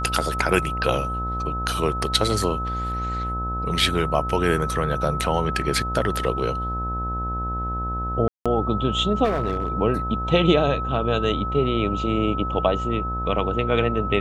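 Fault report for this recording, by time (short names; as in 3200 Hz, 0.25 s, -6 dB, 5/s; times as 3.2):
buzz 60 Hz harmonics 19 -29 dBFS
tone 1300 Hz -27 dBFS
8.28–8.46 gap 0.176 s
9.24–9.68 clipped -18 dBFS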